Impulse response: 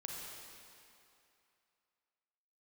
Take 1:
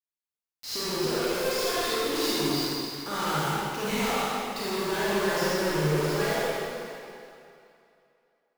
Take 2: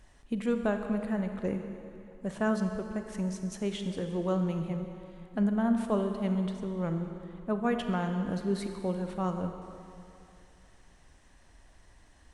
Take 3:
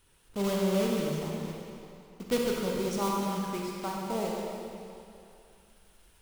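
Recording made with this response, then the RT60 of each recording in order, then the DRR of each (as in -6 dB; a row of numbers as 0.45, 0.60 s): 3; 2.7, 2.7, 2.7 s; -10.0, 5.5, -2.0 dB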